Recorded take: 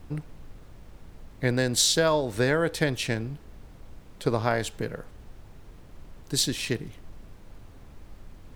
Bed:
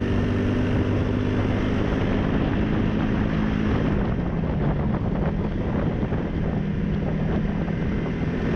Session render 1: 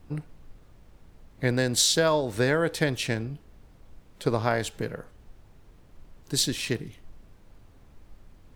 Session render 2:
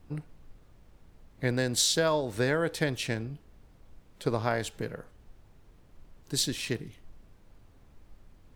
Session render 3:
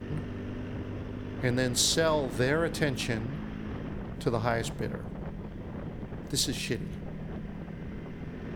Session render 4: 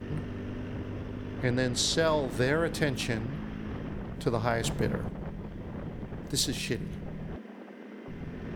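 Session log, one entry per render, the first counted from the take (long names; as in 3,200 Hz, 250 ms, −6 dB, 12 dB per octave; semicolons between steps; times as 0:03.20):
noise reduction from a noise print 6 dB
level −3.5 dB
mix in bed −15 dB
0:01.43–0:01.99: high-frequency loss of the air 50 metres; 0:04.64–0:05.09: clip gain +4.5 dB; 0:07.36–0:08.08: elliptic high-pass filter 220 Hz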